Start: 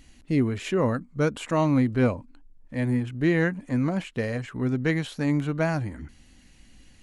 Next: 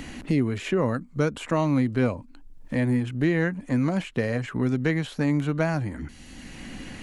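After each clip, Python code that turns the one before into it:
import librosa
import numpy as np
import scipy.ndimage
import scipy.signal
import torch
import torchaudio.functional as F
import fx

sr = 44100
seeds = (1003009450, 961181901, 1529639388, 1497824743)

y = fx.band_squash(x, sr, depth_pct=70)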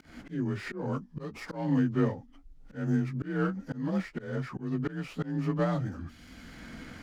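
y = fx.partial_stretch(x, sr, pct=89)
y = fx.auto_swell(y, sr, attack_ms=222.0)
y = fx.running_max(y, sr, window=3)
y = y * 10.0 ** (-2.5 / 20.0)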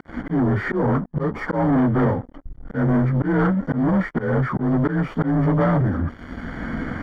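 y = fx.leveller(x, sr, passes=5)
y = scipy.signal.savgol_filter(y, 41, 4, mode='constant')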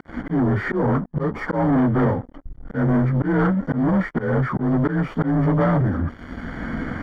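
y = x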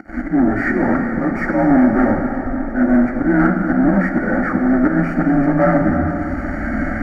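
y = fx.fixed_phaser(x, sr, hz=680.0, stages=8)
y = fx.rev_plate(y, sr, seeds[0], rt60_s=4.8, hf_ratio=0.8, predelay_ms=0, drr_db=2.5)
y = y * 10.0 ** (7.0 / 20.0)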